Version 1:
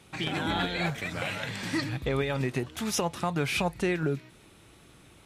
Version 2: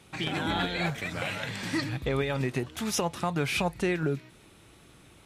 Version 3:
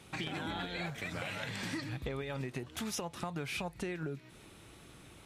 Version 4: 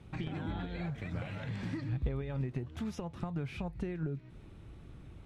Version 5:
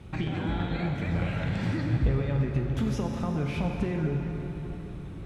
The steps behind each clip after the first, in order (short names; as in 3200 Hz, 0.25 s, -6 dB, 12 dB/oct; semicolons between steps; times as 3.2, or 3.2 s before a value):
nothing audible
compressor 6:1, threshold -36 dBFS, peak gain reduction 12 dB
RIAA curve playback; gain -5 dB
plate-style reverb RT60 4.3 s, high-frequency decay 0.65×, DRR 1.5 dB; gain +7 dB